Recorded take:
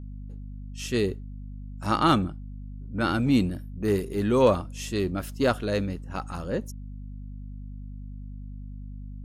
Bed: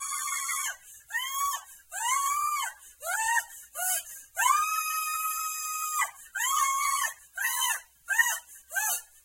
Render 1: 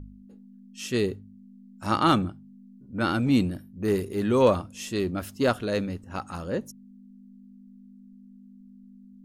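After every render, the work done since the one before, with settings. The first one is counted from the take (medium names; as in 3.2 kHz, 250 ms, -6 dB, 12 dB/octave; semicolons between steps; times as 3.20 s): de-hum 50 Hz, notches 3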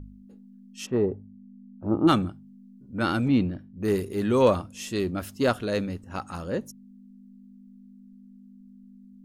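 0.85–2.07 s: resonant low-pass 1 kHz -> 350 Hz, resonance Q 2.7; 3.28–3.81 s: distance through air 230 m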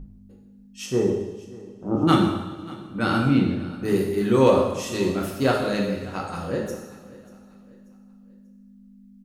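feedback delay 588 ms, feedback 37%, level -20.5 dB; two-slope reverb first 0.96 s, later 2.9 s, from -18 dB, DRR -1.5 dB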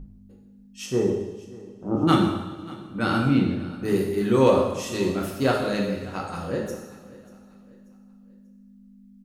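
trim -1 dB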